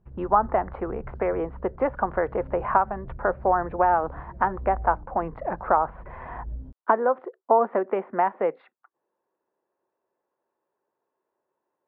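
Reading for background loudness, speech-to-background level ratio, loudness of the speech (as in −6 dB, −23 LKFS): −42.5 LKFS, 17.0 dB, −25.5 LKFS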